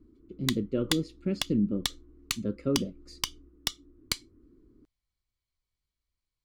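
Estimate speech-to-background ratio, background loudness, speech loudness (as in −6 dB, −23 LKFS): 4.0 dB, −35.5 LKFS, −31.5 LKFS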